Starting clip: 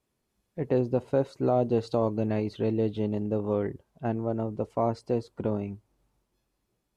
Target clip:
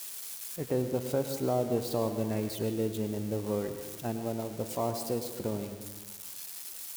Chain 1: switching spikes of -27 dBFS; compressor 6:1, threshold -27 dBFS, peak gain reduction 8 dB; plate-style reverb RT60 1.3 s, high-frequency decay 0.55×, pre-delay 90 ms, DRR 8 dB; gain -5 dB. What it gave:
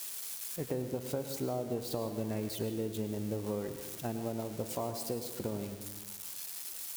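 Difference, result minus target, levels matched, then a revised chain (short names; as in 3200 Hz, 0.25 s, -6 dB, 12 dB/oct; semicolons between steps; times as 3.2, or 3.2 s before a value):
compressor: peak gain reduction +8 dB
switching spikes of -27 dBFS; plate-style reverb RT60 1.3 s, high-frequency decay 0.55×, pre-delay 90 ms, DRR 8 dB; gain -5 dB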